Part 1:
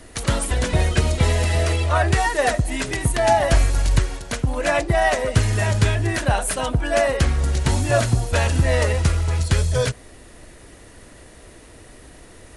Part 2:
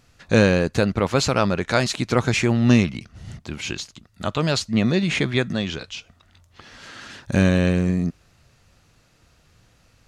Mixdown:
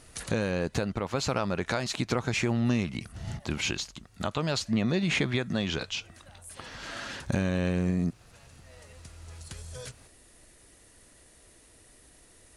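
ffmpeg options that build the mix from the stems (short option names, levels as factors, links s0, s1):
-filter_complex "[0:a]acompressor=threshold=0.0631:ratio=4,highshelf=f=3700:g=11,volume=0.168[s0];[1:a]acompressor=threshold=0.0631:ratio=6,equalizer=f=860:w=1.5:g=3,volume=1.06,asplit=2[s1][s2];[s2]apad=whole_len=554181[s3];[s0][s3]sidechaincompress=threshold=0.00794:ratio=12:attack=23:release=1340[s4];[s4][s1]amix=inputs=2:normalize=0,alimiter=limit=0.168:level=0:latency=1:release=481"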